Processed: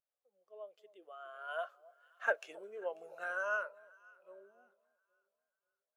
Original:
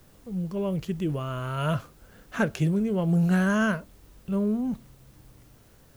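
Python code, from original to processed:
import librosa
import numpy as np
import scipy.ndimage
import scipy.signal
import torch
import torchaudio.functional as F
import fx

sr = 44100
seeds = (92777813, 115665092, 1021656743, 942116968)

p1 = fx.doppler_pass(x, sr, speed_mps=23, closest_m=20.0, pass_at_s=2.48)
p2 = scipy.signal.sosfilt(scipy.signal.butter(4, 540.0, 'highpass', fs=sr, output='sos'), p1)
p3 = fx.notch(p2, sr, hz=950.0, q=14.0)
p4 = p3 + fx.echo_alternate(p3, sr, ms=270, hz=930.0, feedback_pct=67, wet_db=-13.0, dry=0)
p5 = fx.spectral_expand(p4, sr, expansion=1.5)
y = p5 * librosa.db_to_amplitude(-4.5)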